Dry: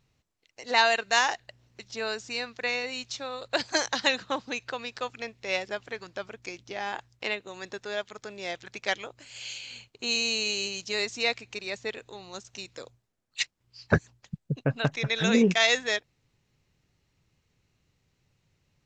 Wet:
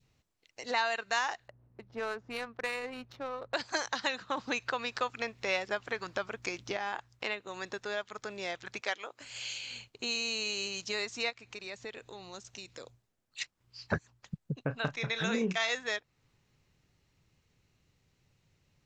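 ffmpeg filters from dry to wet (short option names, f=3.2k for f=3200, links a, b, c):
-filter_complex "[0:a]asettb=1/sr,asplit=3[a][b][c];[a]atrim=end=1.484[d];[b]atrim=start=1.48:end=3.54,asetpts=PTS-STARTPTS,afade=t=in:d=0.004:c=qsin,afade=t=out:st=2.056:d=0.004:c=qsin,adynamicsmooth=sensitivity=2.5:basefreq=830[e];[c]atrim=start=3.536[f];[d][e]acrossfade=d=0.004:c1=hsin:c2=qsin[g];[g][f]acrossfade=d=0.004:c1=qsin:c2=hsin,asettb=1/sr,asplit=3[h][i][j];[h]atrim=end=4.374[k];[i]atrim=start=4.37:end=6.77,asetpts=PTS-STARTPTS,afade=t=in:d=0.004:c=qsin,afade=t=out:st=2.396:d=0.004:c=qsin,acontrast=61[l];[j]atrim=start=6.766[m];[k][l]acrossfade=d=0.004:c1=hsin:c2=qsin[n];[n][m]acrossfade=d=0.004:c1=qsin:c2=hsin,asettb=1/sr,asplit=3[o][p][q];[o]atrim=end=8.814[r];[p]atrim=start=8.81:end=9.21,asetpts=PTS-STARTPTS,afade=t=in:d=0.004:c=qsin,afade=t=out:st=0.396:d=0.004:c=qsin,highpass=310[s];[q]atrim=start=9.206[t];[r][s]acrossfade=d=0.004:c1=hsin:c2=qsin[u];[u][t]acrossfade=d=0.004:c1=qsin:c2=hsin,asplit=3[v][w][x];[v]afade=t=out:st=11.29:d=0.02[y];[w]acompressor=threshold=-45dB:ratio=2:attack=3.2:release=140:knee=1:detection=peak,afade=t=in:st=11.29:d=0.02,afade=t=out:st=13.41:d=0.02[z];[x]afade=t=in:st=13.41:d=0.02[aa];[y][z][aa]amix=inputs=3:normalize=0,asettb=1/sr,asplit=3[ab][ac][ad];[ab]atrim=end=14.614[ae];[ac]atrim=start=14.61:end=15.73,asetpts=PTS-STARTPTS,afade=t=in:d=0.004:c=qsin,afade=t=out:st=1.116:d=0.004:c=qsin,asplit=2[af][ag];[ag]adelay=32,volume=-11dB[ah];[af][ah]amix=inputs=2:normalize=0,atrim=end_sample=49392[ai];[ad]atrim=start=15.726[aj];[ae][ai]acrossfade=d=0.004:c1=hsin:c2=qsin[ak];[ak][aj]acrossfade=d=0.004:c1=qsin:c2=hsin,adynamicequalizer=threshold=0.00708:dfrequency=1200:dqfactor=1.2:tfrequency=1200:tqfactor=1.2:attack=5:release=100:ratio=0.375:range=3:mode=boostabove:tftype=bell,acompressor=threshold=-36dB:ratio=2"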